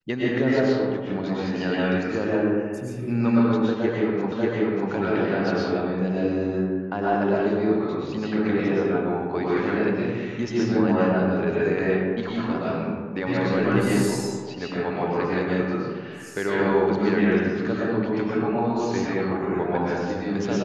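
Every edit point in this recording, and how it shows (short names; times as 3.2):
4.32 repeat of the last 0.59 s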